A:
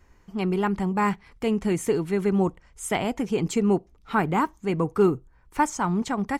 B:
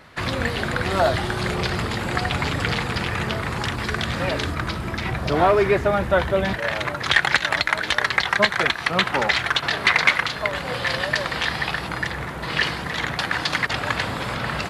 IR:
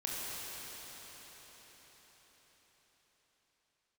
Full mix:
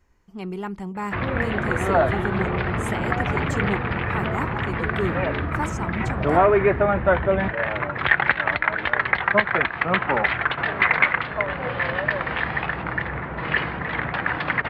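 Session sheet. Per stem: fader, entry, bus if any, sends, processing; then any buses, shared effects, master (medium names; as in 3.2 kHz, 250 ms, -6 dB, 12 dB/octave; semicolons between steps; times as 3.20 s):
-6.5 dB, 0.00 s, no send, none
+0.5 dB, 0.95 s, no send, low-pass 2.4 kHz 24 dB/octave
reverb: none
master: none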